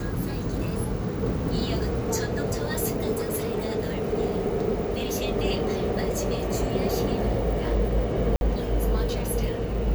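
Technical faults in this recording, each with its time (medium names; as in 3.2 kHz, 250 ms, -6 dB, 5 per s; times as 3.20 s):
3.15–3.58 s: clipped -23.5 dBFS
8.36–8.41 s: dropout 51 ms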